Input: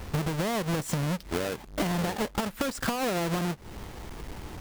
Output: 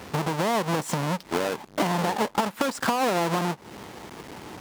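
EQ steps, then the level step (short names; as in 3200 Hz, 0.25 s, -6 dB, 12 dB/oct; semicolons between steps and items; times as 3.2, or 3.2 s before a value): HPF 170 Hz 12 dB/oct; dynamic EQ 920 Hz, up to +7 dB, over -49 dBFS, Q 2.3; high shelf 12000 Hz -6 dB; +3.5 dB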